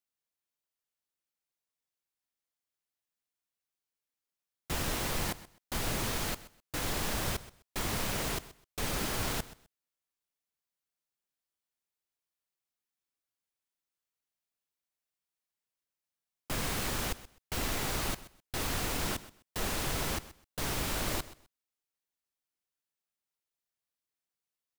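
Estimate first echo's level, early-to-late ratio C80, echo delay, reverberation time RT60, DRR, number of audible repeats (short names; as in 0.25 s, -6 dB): -17.0 dB, none, 0.128 s, none, none, 2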